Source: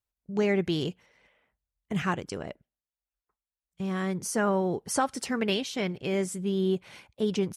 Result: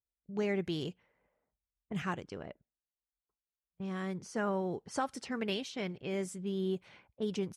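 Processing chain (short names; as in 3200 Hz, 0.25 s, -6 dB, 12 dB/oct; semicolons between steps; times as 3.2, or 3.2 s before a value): low-pass opened by the level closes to 790 Hz, open at -25 dBFS; gain -7.5 dB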